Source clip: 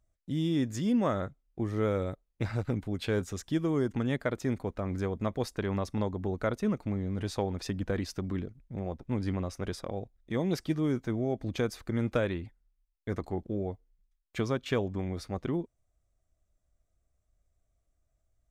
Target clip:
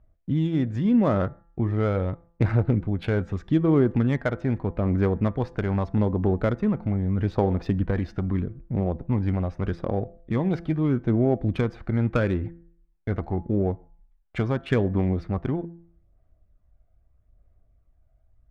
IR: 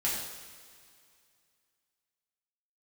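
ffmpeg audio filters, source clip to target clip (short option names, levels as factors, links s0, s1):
-filter_complex "[0:a]asplit=2[s0][s1];[s1]acompressor=threshold=0.0126:ratio=6,volume=0.794[s2];[s0][s2]amix=inputs=2:normalize=0,bass=f=250:g=2,treble=f=4000:g=-8,aphaser=in_gain=1:out_gain=1:delay=1.4:decay=0.34:speed=0.8:type=sinusoidal,bandreject=f=169.2:t=h:w=4,bandreject=f=338.4:t=h:w=4,bandreject=f=507.6:t=h:w=4,bandreject=f=676.8:t=h:w=4,bandreject=f=846:t=h:w=4,bandreject=f=1015.2:t=h:w=4,bandreject=f=1184.4:t=h:w=4,bandreject=f=1353.6:t=h:w=4,bandreject=f=1522.8:t=h:w=4,bandreject=f=1692:t=h:w=4,bandreject=f=1861.2:t=h:w=4,asplit=2[s3][s4];[1:a]atrim=start_sample=2205,atrim=end_sample=6174,adelay=26[s5];[s4][s5]afir=irnorm=-1:irlink=0,volume=0.0316[s6];[s3][s6]amix=inputs=2:normalize=0,adynamicsmooth=sensitivity=3:basefreq=2200,volume=1.5"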